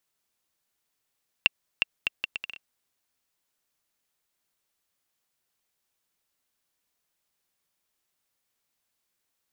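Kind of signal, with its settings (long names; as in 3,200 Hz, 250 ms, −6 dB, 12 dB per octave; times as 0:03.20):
bouncing ball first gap 0.36 s, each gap 0.69, 2,730 Hz, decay 19 ms −4 dBFS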